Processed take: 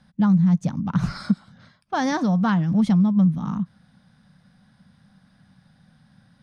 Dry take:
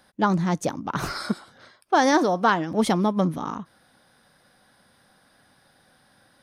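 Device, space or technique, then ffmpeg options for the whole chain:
jukebox: -af "lowpass=7100,lowshelf=frequency=260:width_type=q:width=3:gain=11.5,acompressor=threshold=-13dB:ratio=3,volume=-4dB"

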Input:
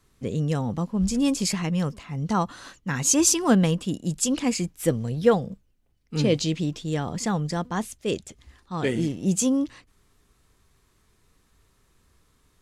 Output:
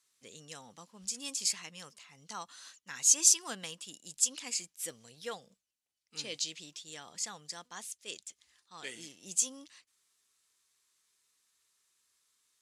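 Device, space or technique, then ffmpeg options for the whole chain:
piezo pickup straight into a mixer: -af "lowpass=8400,aderivative"

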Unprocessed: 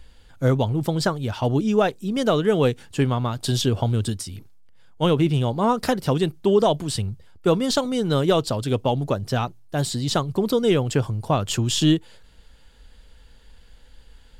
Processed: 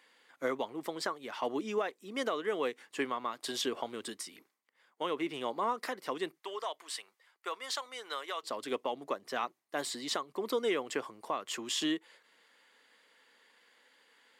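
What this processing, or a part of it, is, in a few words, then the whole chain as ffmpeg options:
laptop speaker: -filter_complex "[0:a]highpass=frequency=290:width=0.5412,highpass=frequency=290:width=1.3066,equalizer=frequency=1100:width_type=o:width=0.34:gain=8.5,equalizer=frequency=2000:width_type=o:width=0.51:gain=11,alimiter=limit=-13.5dB:level=0:latency=1:release=496,asplit=3[link_01][link_02][link_03];[link_01]afade=type=out:start_time=6.38:duration=0.02[link_04];[link_02]highpass=840,afade=type=in:start_time=6.38:duration=0.02,afade=type=out:start_time=8.42:duration=0.02[link_05];[link_03]afade=type=in:start_time=8.42:duration=0.02[link_06];[link_04][link_05][link_06]amix=inputs=3:normalize=0,volume=-8.5dB"

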